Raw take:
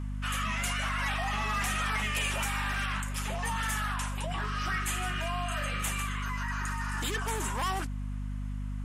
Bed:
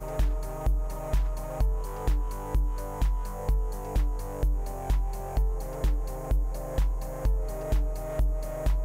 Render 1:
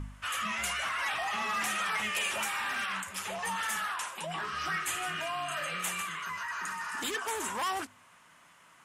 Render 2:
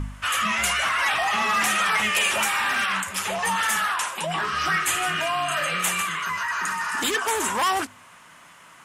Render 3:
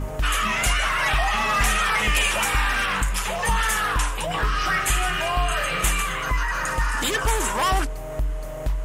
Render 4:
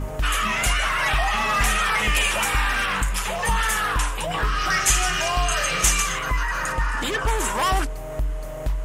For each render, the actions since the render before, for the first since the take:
de-hum 50 Hz, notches 5
gain +10 dB
add bed +1 dB
4.7–6.19 bell 5800 Hz +13.5 dB; 6.72–7.39 high shelf 5100 Hz -9.5 dB

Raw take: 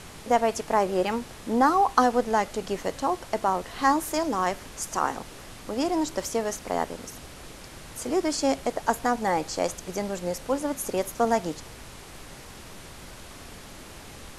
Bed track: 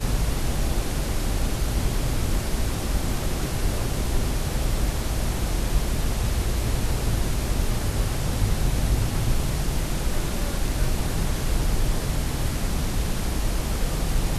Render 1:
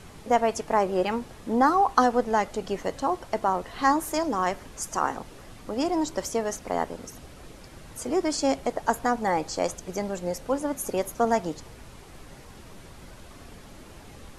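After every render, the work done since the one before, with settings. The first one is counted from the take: denoiser 7 dB, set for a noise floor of -44 dBFS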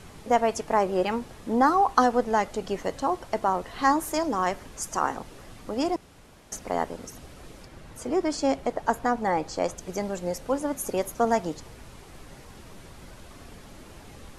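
5.96–6.52 room tone; 7.65–9.78 high shelf 4400 Hz -7 dB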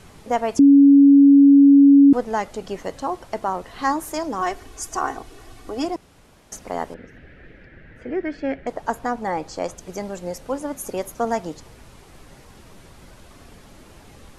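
0.59–2.13 bleep 280 Hz -7 dBFS; 4.41–5.85 comb 2.7 ms, depth 71%; 6.94–8.67 EQ curve 500 Hz 0 dB, 1100 Hz -13 dB, 1700 Hz +11 dB, 7500 Hz -29 dB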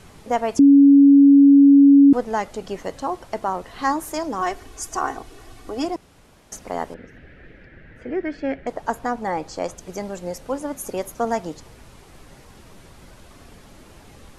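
nothing audible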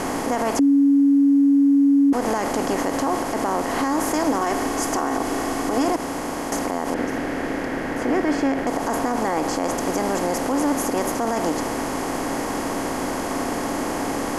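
per-bin compression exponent 0.4; limiter -12 dBFS, peak gain reduction 10 dB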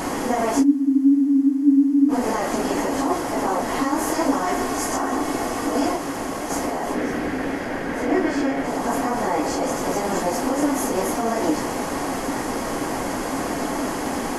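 phase scrambler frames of 0.1 s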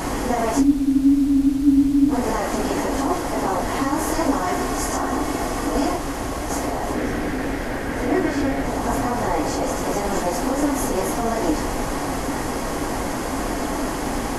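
add bed track -8.5 dB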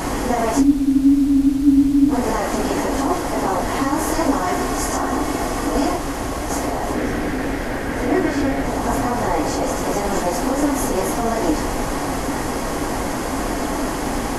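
gain +2 dB

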